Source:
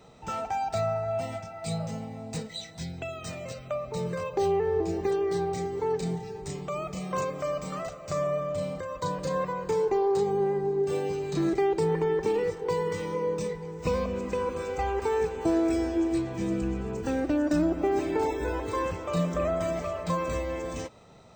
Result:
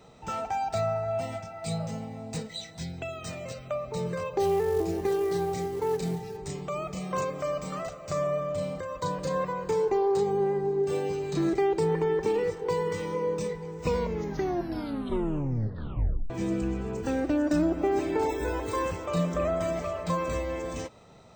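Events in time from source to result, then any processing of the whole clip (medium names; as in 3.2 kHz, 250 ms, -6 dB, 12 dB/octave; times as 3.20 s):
4.40–6.37 s: companded quantiser 6-bit
13.85 s: tape stop 2.45 s
18.29–19.06 s: treble shelf 7.8 kHz +9 dB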